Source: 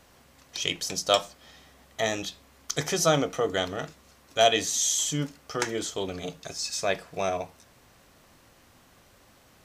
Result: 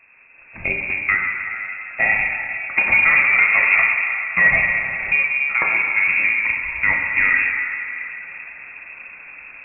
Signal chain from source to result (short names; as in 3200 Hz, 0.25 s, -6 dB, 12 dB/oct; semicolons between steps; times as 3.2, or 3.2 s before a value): HPF 52 Hz; tilt -2.5 dB/oct; AGC gain up to 12 dB; 2.78–5.13 sample leveller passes 2; compressor, threshold -15 dBFS, peak gain reduction 10 dB; plate-style reverb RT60 3.3 s, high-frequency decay 0.35×, DRR 0 dB; inverted band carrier 2600 Hz